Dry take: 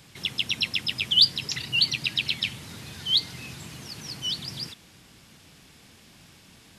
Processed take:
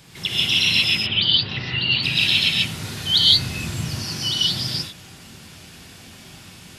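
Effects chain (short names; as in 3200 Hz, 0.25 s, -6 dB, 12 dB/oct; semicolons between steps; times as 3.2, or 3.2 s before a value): 0.88–2.03 Bessel low-pass 2300 Hz, order 6; 3.16–3.88 low shelf 140 Hz +10 dB; non-linear reverb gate 0.2 s rising, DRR -6 dB; gain +3 dB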